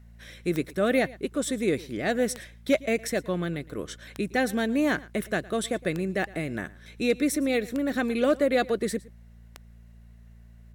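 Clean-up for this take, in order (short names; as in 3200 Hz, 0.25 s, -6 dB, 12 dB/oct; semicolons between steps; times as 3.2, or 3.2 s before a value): clip repair -13.5 dBFS; de-click; de-hum 57.1 Hz, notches 4; inverse comb 0.112 s -21 dB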